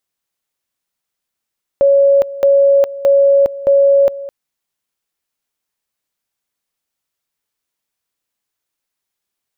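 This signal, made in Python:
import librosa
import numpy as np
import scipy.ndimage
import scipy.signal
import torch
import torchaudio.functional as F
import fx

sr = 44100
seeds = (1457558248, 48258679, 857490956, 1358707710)

y = fx.two_level_tone(sr, hz=557.0, level_db=-6.5, drop_db=17.0, high_s=0.41, low_s=0.21, rounds=4)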